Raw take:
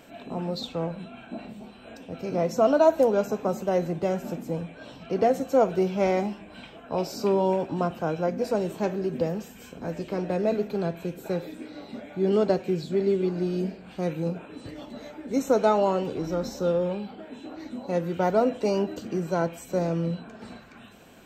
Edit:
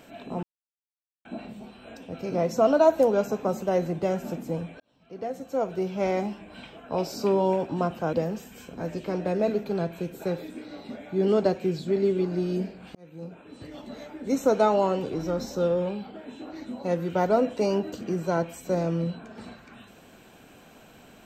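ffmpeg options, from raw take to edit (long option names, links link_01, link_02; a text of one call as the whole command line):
ffmpeg -i in.wav -filter_complex "[0:a]asplit=6[link_01][link_02][link_03][link_04][link_05][link_06];[link_01]atrim=end=0.43,asetpts=PTS-STARTPTS,afade=type=out:start_time=0.426:duration=0.004:curve=hsin[link_07];[link_02]atrim=start=0.43:end=1.25,asetpts=PTS-STARTPTS,volume=0[link_08];[link_03]atrim=start=1.25:end=4.8,asetpts=PTS-STARTPTS,afade=type=in:duration=0.004:curve=hsin,afade=type=out:start_time=3.546:duration=0.004:curve=hsin[link_09];[link_04]atrim=start=4.8:end=8.132,asetpts=PTS-STARTPTS,afade=type=in:duration=1.7[link_10];[link_05]atrim=start=9.168:end=13.99,asetpts=PTS-STARTPTS,afade=type=out:start_time=4.818:duration=0.004:curve=hsin[link_11];[link_06]atrim=start=13.99,asetpts=PTS-STARTPTS,afade=type=in:duration=0.95[link_12];[link_07][link_08][link_09][link_10]concat=n=4:v=0:a=1[link_13];[link_11][link_12]concat=n=2:v=0:a=1[link_14];[link_13][link_14]acrossfade=duration=0.004:curve1=hsin:curve2=hsin" out.wav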